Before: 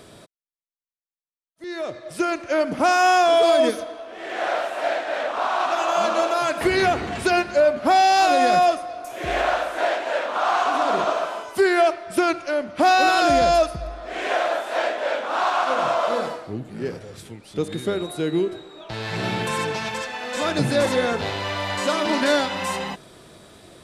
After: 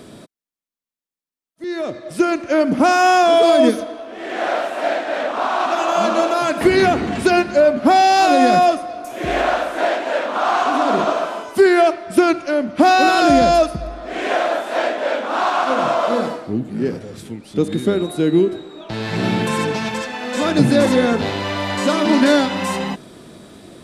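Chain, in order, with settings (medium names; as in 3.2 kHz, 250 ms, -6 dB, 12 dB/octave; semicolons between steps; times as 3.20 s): peaking EQ 240 Hz +9.5 dB 1.2 oct; trim +2.5 dB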